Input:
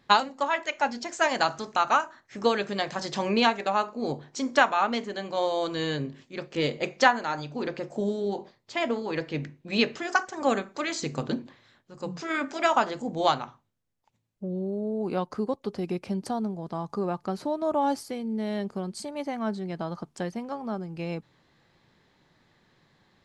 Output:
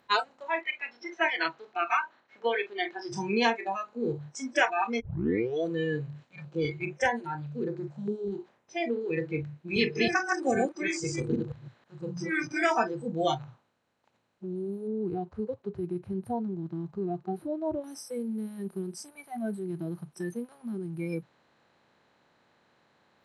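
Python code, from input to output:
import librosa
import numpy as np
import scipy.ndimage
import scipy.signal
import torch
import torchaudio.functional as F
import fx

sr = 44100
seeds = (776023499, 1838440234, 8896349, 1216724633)

y = fx.cabinet(x, sr, low_hz=300.0, low_slope=12, high_hz=4500.0, hz=(610.0, 2200.0, 3200.0), db=(-4, 4, 4), at=(0.61, 3.12))
y = fx.filter_held_notch(y, sr, hz=4.9, low_hz=380.0, high_hz=6400.0, at=(6.24, 9.01))
y = fx.reverse_delay(y, sr, ms=160, wet_db=-2, at=(9.6, 12.77))
y = fx.lowpass(y, sr, hz=1200.0, slope=6, at=(14.87, 17.84))
y = fx.edit(y, sr, fx.tape_start(start_s=5.0, length_s=0.64), tone=tone)
y = fx.bin_compress(y, sr, power=0.4)
y = fx.noise_reduce_blind(y, sr, reduce_db=30)
y = scipy.signal.sosfilt(scipy.signal.butter(2, 58.0, 'highpass', fs=sr, output='sos'), y)
y = y * librosa.db_to_amplitude(-5.0)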